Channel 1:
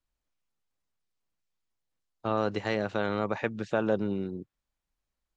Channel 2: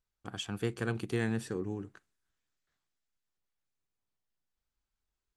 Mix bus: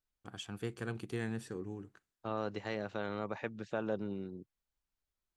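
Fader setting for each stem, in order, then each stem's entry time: −9.0, −6.0 decibels; 0.00, 0.00 seconds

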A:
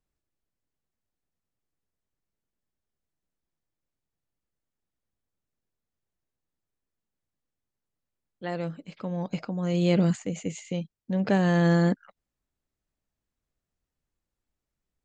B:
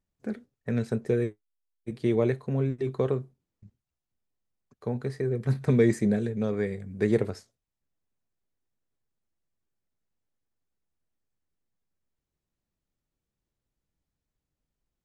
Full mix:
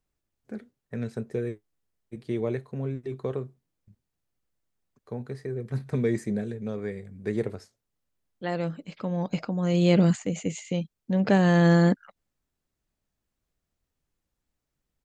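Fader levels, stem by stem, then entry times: +2.5, −4.5 decibels; 0.00, 0.25 seconds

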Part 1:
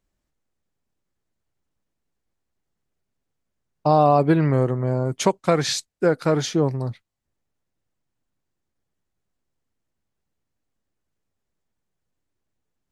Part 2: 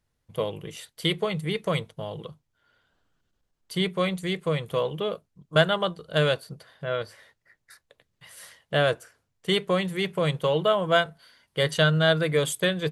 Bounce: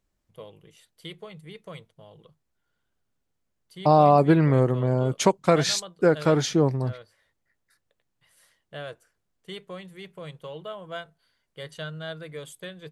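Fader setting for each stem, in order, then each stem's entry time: −0.5, −15.0 decibels; 0.00, 0.00 seconds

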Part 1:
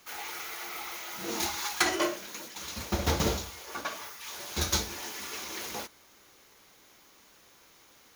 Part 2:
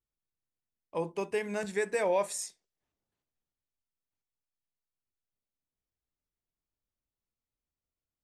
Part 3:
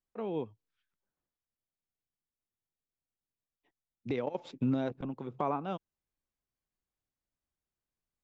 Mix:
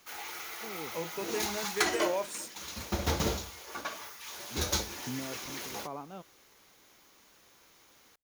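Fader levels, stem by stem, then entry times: −2.5, −4.5, −9.0 decibels; 0.00, 0.00, 0.45 seconds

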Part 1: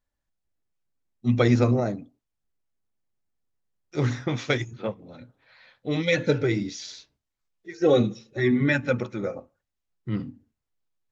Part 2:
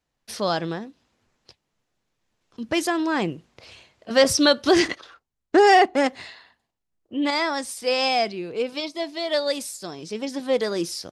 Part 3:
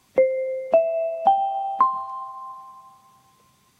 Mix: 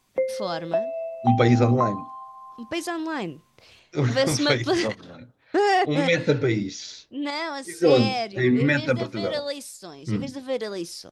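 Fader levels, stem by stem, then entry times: +1.5, −5.5, −6.5 decibels; 0.00, 0.00, 0.00 seconds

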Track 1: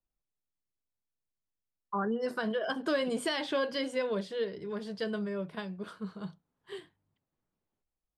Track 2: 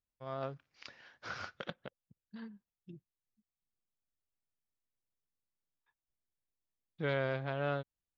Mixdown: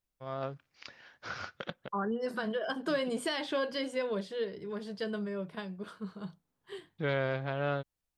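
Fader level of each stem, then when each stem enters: −1.5, +2.5 decibels; 0.00, 0.00 seconds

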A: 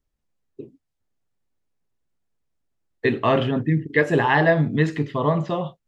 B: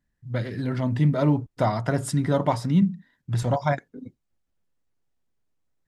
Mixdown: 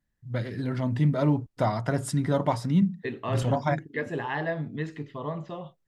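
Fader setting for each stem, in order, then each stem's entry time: −12.5, −2.5 decibels; 0.00, 0.00 seconds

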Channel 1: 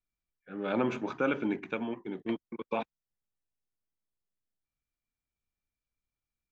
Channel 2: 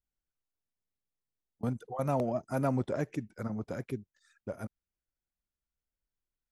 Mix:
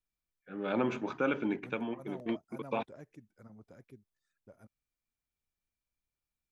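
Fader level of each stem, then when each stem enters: −1.5, −18.0 decibels; 0.00, 0.00 seconds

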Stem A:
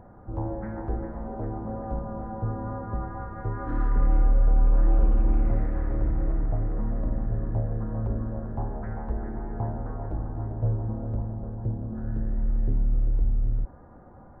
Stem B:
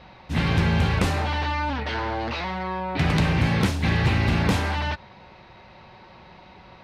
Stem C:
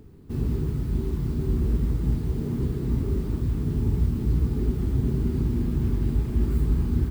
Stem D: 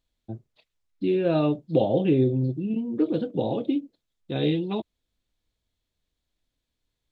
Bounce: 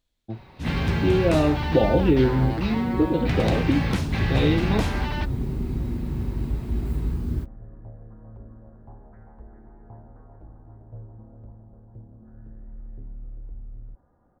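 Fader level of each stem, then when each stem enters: −15.0, −4.0, −3.5, +2.0 decibels; 0.30, 0.30, 0.35, 0.00 seconds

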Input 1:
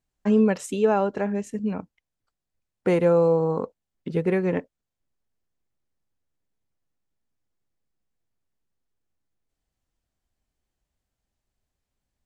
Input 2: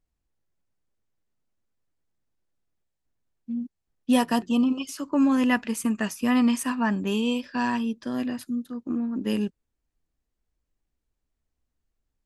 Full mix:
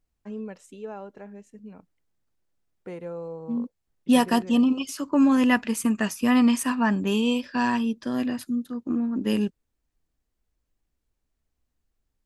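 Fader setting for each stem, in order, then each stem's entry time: −16.5, +2.0 decibels; 0.00, 0.00 seconds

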